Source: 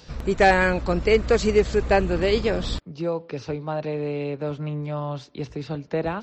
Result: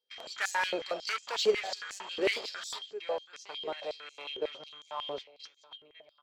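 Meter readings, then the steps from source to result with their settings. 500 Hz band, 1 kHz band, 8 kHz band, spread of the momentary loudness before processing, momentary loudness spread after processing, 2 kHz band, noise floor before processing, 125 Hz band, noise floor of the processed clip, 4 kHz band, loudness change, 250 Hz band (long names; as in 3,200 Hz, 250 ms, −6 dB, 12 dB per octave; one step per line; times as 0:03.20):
−13.0 dB, −12.5 dB, can't be measured, 12 LU, 18 LU, −9.5 dB, −48 dBFS, below −30 dB, −66 dBFS, −1.0 dB, −11.0 dB, −20.0 dB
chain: fade-out on the ending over 1.10 s
steady tone 3,200 Hz −45 dBFS
noise gate −33 dBFS, range −38 dB
parametric band 4,000 Hz +7 dB 1.6 octaves
on a send: single-tap delay 1,187 ms −20.5 dB
on the sum: flanger 1.4 Hz, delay 7.6 ms, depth 5.4 ms, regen −83%
soft clipping −22 dBFS, distortion −10 dB
harmonic generator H 8 −32 dB, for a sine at −22 dBFS
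high-pass on a step sequencer 11 Hz 430–6,800 Hz
level −5 dB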